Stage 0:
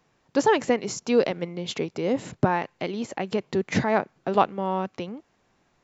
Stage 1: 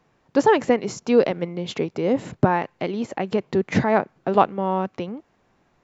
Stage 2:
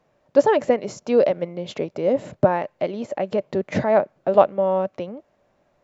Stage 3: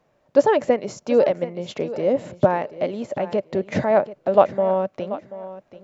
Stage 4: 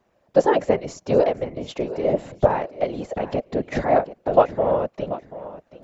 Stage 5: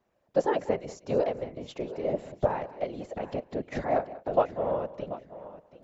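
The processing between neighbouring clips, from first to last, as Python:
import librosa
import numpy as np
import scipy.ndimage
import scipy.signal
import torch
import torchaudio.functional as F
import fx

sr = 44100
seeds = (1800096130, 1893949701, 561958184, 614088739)

y1 = fx.high_shelf(x, sr, hz=3100.0, db=-8.5)
y1 = F.gain(torch.from_numpy(y1), 4.0).numpy()
y2 = fx.peak_eq(y1, sr, hz=590.0, db=14.5, octaves=0.33)
y2 = F.gain(torch.from_numpy(y2), -4.0).numpy()
y3 = fx.echo_feedback(y2, sr, ms=734, feedback_pct=24, wet_db=-15.0)
y4 = fx.whisperise(y3, sr, seeds[0])
y4 = F.gain(torch.from_numpy(y4), -1.0).numpy()
y5 = y4 + 10.0 ** (-17.5 / 20.0) * np.pad(y4, (int(189 * sr / 1000.0), 0))[:len(y4)]
y5 = F.gain(torch.from_numpy(y5), -8.5).numpy()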